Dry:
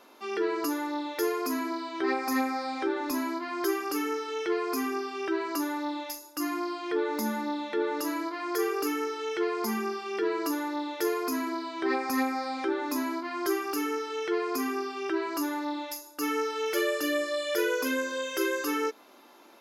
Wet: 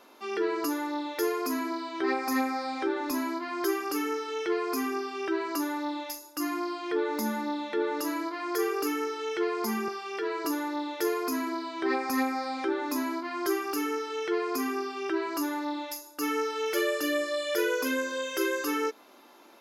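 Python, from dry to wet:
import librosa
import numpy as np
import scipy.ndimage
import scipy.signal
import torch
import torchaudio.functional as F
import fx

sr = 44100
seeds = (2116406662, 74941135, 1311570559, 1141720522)

y = fx.highpass(x, sr, hz=440.0, slope=12, at=(9.88, 10.45))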